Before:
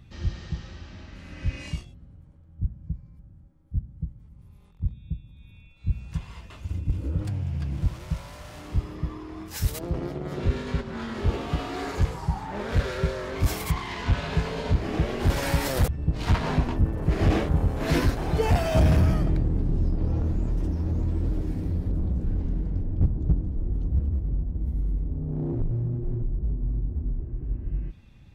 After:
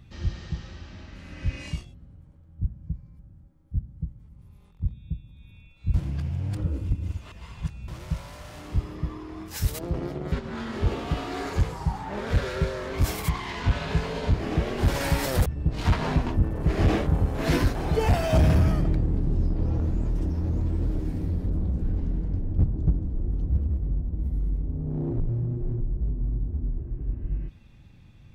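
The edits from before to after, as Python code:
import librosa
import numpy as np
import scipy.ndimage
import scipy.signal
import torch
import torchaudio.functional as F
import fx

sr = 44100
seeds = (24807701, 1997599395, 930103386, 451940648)

y = fx.edit(x, sr, fx.reverse_span(start_s=5.94, length_s=1.94),
    fx.cut(start_s=10.32, length_s=0.42), tone=tone)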